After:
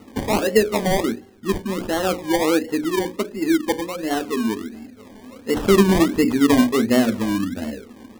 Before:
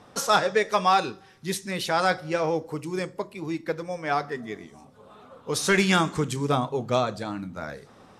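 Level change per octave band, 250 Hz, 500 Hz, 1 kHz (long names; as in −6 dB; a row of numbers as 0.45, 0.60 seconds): +12.0, +6.0, −1.5 decibels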